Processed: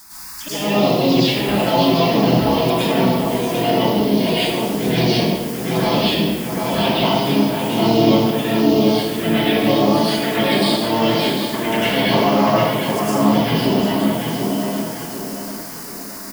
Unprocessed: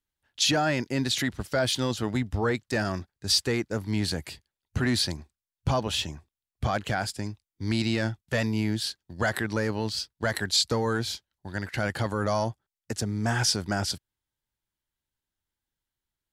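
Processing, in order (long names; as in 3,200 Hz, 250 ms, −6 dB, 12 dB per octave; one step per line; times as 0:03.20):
treble cut that deepens with the level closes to 1,300 Hz, closed at −24.5 dBFS
comb filter 6 ms, depth 73%
pitch-shifted copies added +5 semitones −1 dB, +12 semitones −5 dB
low-shelf EQ 90 Hz −11.5 dB
volume swells 302 ms
in parallel at −1.5 dB: downward compressor, threshold −35 dBFS, peak gain reduction 15 dB
on the sum: brickwall limiter −20.5 dBFS, peak gain reduction 10.5 dB
background noise white −48 dBFS
phaser swept by the level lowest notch 470 Hz, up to 1,700 Hz, full sweep at −25.5 dBFS
thirty-one-band graphic EQ 100 Hz −11 dB, 1,000 Hz +4 dB, 3,150 Hz +6 dB, 5,000 Hz +8 dB
on a send: tape delay 743 ms, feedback 49%, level −3 dB, low-pass 2,900 Hz
on the sum: dense smooth reverb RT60 1.1 s, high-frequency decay 0.8×, pre-delay 90 ms, DRR −10 dB
level +5 dB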